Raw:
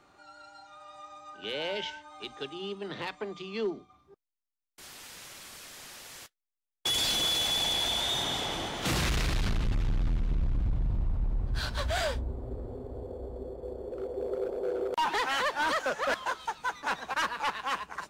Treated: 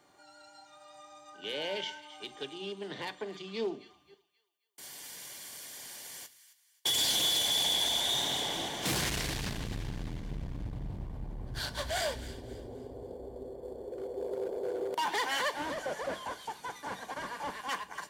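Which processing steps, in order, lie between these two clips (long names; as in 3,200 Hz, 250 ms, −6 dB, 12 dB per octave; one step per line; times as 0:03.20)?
0:15.51–0:17.69: linear delta modulator 64 kbit/s, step −52.5 dBFS
high-shelf EQ 6,700 Hz +12 dB
notch comb filter 1,300 Hz
delay with a high-pass on its return 266 ms, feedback 36%, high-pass 1,400 Hz, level −14.5 dB
rectangular room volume 290 cubic metres, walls furnished, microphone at 0.36 metres
highs frequency-modulated by the lows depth 0.35 ms
level −2.5 dB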